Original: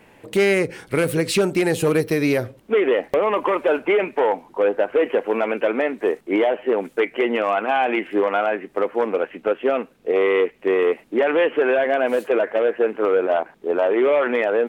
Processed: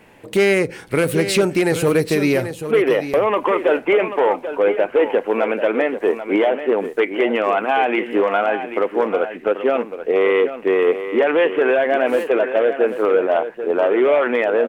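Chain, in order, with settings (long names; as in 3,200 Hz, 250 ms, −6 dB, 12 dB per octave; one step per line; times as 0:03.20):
single-tap delay 787 ms −10.5 dB
level +2 dB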